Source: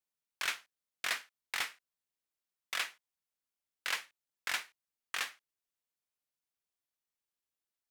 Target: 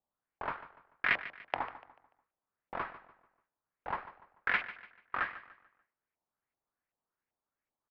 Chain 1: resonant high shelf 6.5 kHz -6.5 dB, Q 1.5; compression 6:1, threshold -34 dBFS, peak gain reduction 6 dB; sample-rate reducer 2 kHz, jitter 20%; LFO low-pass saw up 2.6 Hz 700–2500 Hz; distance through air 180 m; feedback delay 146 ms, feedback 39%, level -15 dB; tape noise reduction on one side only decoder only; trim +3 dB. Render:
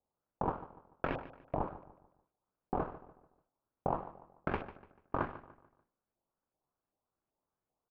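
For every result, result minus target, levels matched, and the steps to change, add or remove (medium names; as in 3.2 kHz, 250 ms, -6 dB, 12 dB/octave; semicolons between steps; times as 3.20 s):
sample-rate reducer: distortion +21 dB; compression: peak gain reduction +6 dB
change: sample-rate reducer 7.1 kHz, jitter 20%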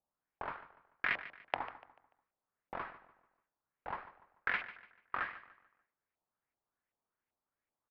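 compression: peak gain reduction +6 dB
remove: compression 6:1, threshold -34 dBFS, peak gain reduction 6 dB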